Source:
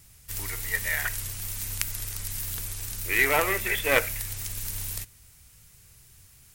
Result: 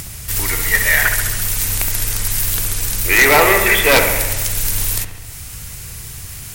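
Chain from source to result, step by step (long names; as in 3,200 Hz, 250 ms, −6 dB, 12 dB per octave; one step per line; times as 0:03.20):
upward compression, threshold −37 dBFS
sine wavefolder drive 16 dB, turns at −1 dBFS
on a send: delay with a low-pass on its return 68 ms, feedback 68%, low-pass 2,400 Hz, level −7 dB
on the sum: level −5 dB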